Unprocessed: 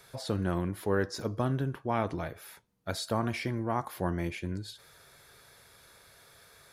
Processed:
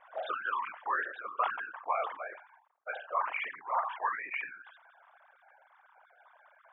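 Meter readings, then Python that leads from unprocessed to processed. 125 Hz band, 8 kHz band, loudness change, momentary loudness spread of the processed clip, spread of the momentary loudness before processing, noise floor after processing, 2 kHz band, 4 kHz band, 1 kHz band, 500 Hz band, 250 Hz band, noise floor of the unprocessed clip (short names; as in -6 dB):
under -40 dB, under -35 dB, -2.0 dB, 10 LU, 11 LU, -67 dBFS, +5.0 dB, -9.0 dB, +4.0 dB, -8.0 dB, under -25 dB, -59 dBFS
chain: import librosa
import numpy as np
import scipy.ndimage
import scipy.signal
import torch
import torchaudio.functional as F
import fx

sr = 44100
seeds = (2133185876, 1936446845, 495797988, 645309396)

y = fx.sine_speech(x, sr)
y = scipy.signal.sosfilt(scipy.signal.butter(6, 700.0, 'highpass', fs=sr, output='sos'), y)
y = fx.peak_eq(y, sr, hz=1000.0, db=5.0, octaves=0.91)
y = fx.rider(y, sr, range_db=10, speed_s=0.5)
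y = fx.whisperise(y, sr, seeds[0])
y = fx.env_lowpass(y, sr, base_hz=950.0, full_db=-26.0)
y = fx.sustainer(y, sr, db_per_s=99.0)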